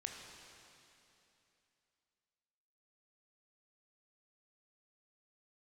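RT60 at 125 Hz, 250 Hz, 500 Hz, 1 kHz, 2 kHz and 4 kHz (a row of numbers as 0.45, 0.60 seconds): 3.0, 3.0, 3.0, 2.9, 2.9, 2.9 seconds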